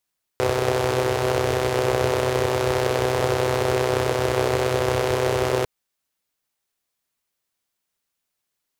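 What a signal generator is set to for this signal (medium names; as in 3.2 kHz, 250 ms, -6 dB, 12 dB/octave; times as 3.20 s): four-cylinder engine model, steady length 5.25 s, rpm 3800, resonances 99/430 Hz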